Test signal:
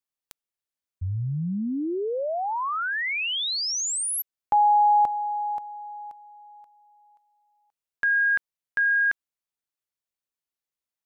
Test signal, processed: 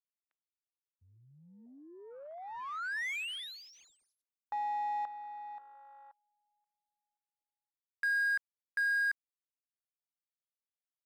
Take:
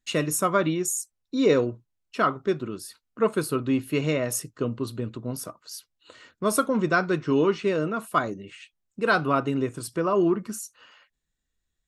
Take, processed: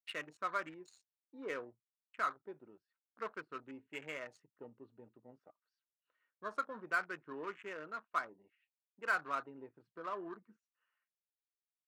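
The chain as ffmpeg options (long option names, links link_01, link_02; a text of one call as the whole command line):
ffmpeg -i in.wav -af "afwtdn=0.0178,bandpass=frequency=1900:width_type=q:width=1.3:csg=0,adynamicsmooth=sensitivity=7.5:basefreq=2100,volume=-8dB" out.wav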